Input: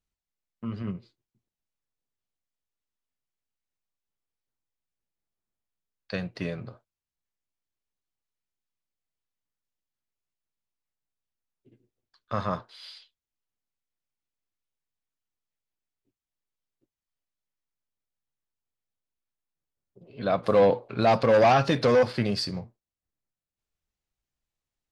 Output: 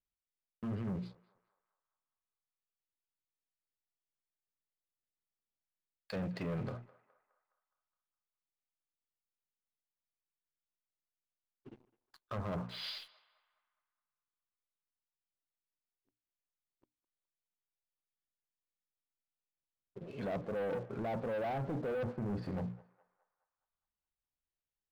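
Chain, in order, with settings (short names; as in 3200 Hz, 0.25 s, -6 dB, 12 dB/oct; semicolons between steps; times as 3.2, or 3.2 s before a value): LPF 4100 Hz; treble ducked by the level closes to 620 Hz, closed at -25 dBFS; notches 60/120/180/240/300 Hz; limiter -20 dBFS, peak gain reduction 7.5 dB; reverse; compressor 5:1, threshold -37 dBFS, peak gain reduction 12.5 dB; reverse; sample leveller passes 3; on a send: narrowing echo 0.208 s, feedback 54%, band-pass 1200 Hz, level -18 dB; on the sum: gain -4.5 dB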